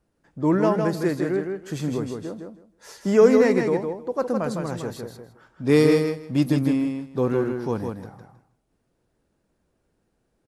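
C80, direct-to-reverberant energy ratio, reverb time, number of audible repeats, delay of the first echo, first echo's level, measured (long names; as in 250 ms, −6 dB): no reverb audible, no reverb audible, no reverb audible, 3, 159 ms, −5.0 dB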